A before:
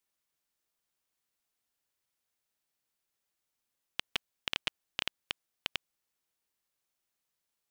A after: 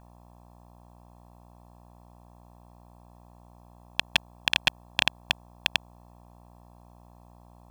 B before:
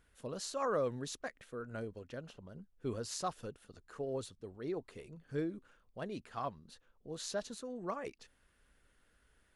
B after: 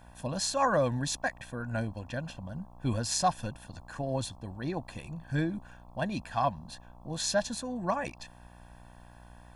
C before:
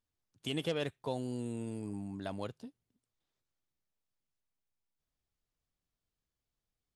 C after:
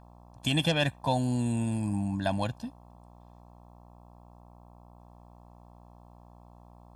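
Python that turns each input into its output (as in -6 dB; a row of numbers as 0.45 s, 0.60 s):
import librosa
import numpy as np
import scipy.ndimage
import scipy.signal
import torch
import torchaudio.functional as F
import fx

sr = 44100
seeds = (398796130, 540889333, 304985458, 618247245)

y = fx.dmg_buzz(x, sr, base_hz=60.0, harmonics=22, level_db=-65.0, tilt_db=-3, odd_only=False)
y = y + 0.88 * np.pad(y, (int(1.2 * sr / 1000.0), 0))[:len(y)]
y = y * librosa.db_to_amplitude(8.5)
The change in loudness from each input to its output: +10.5 LU, +8.5 LU, +9.5 LU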